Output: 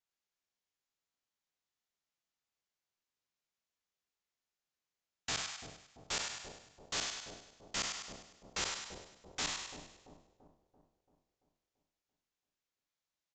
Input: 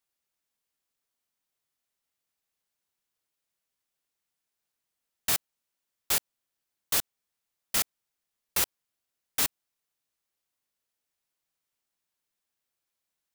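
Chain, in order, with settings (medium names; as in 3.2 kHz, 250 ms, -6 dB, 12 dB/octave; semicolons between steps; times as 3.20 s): spectral sustain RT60 0.47 s; resampled via 16 kHz; two-band feedback delay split 740 Hz, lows 338 ms, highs 101 ms, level -5.5 dB; trim -8 dB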